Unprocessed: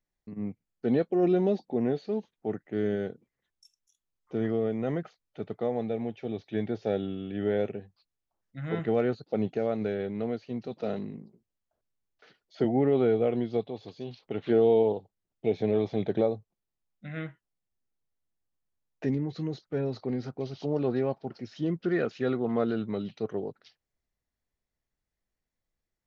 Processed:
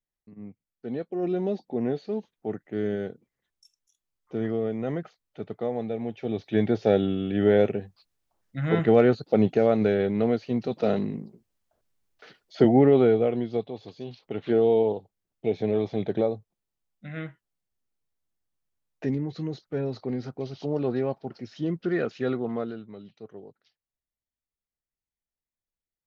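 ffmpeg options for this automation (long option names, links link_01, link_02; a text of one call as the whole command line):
ffmpeg -i in.wav -af "volume=8dB,afade=type=in:start_time=0.91:duration=0.98:silence=0.398107,afade=type=in:start_time=6:duration=0.66:silence=0.421697,afade=type=out:start_time=12.67:duration=0.68:silence=0.446684,afade=type=out:start_time=22.33:duration=0.5:silence=0.251189" out.wav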